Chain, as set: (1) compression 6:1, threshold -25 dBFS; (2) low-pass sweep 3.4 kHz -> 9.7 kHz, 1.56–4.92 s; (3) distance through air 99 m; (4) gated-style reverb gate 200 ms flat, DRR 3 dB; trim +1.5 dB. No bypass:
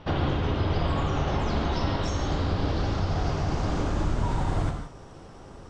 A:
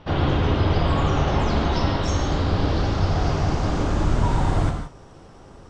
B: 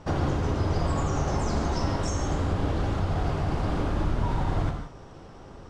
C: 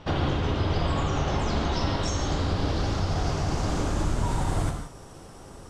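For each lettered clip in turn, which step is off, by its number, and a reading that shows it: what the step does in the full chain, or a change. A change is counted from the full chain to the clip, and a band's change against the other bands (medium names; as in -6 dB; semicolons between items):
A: 1, mean gain reduction 4.5 dB; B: 2, 4 kHz band -4.0 dB; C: 3, 4 kHz band +2.5 dB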